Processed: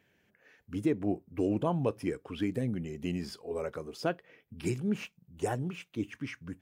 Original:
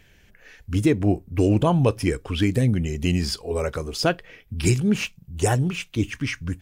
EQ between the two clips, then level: HPF 170 Hz 12 dB/oct; bell 5600 Hz -8.5 dB 2.8 oct; high shelf 9000 Hz -3.5 dB; -8.5 dB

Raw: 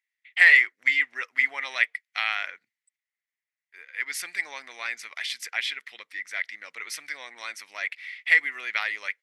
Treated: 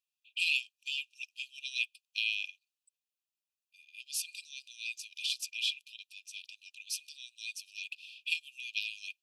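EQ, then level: brick-wall FIR high-pass 2400 Hz; -1.0 dB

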